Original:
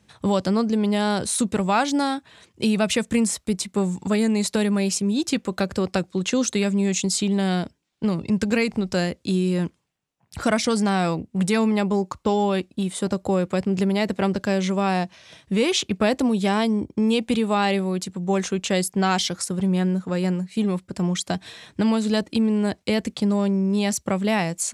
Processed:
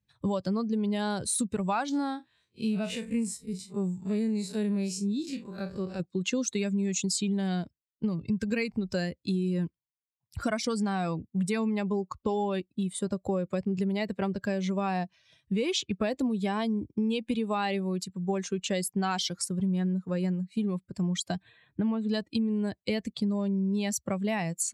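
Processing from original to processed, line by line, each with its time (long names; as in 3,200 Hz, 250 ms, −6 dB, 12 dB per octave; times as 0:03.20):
0:01.89–0:06.00: spectrum smeared in time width 97 ms
0:21.42–0:22.09: moving average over 8 samples
whole clip: spectral dynamics exaggerated over time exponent 1.5; downward compressor 4 to 1, threshold −26 dBFS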